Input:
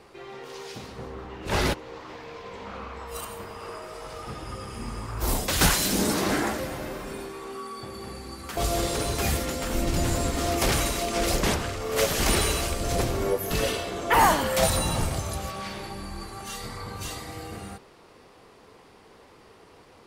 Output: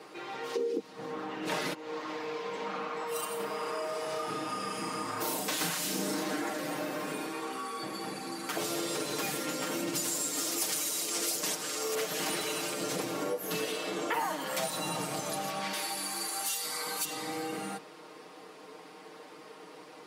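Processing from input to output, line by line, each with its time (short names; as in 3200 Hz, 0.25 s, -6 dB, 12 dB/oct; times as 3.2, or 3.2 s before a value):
0.56–0.79 spectral gain 210–520 Hz +25 dB
3.36–6.23 doubler 35 ms -3 dB
9.95–11.95 tone controls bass -4 dB, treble +13 dB
15.73–17.05 RIAA curve recording
whole clip: HPF 190 Hz 24 dB/oct; comb 6.5 ms, depth 85%; compressor 6:1, threshold -32 dBFS; gain +1 dB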